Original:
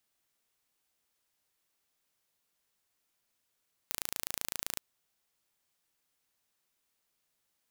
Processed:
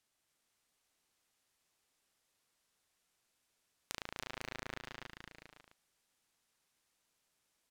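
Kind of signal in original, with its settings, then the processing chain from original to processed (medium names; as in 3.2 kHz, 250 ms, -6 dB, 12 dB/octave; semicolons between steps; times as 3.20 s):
pulse train 27.8 per s, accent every 0, -7 dBFS 0.88 s
low-pass that closes with the level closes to 2.5 kHz, closed at -49 dBFS; bouncing-ball echo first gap 280 ms, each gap 0.8×, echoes 5; decimation joined by straight lines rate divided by 2×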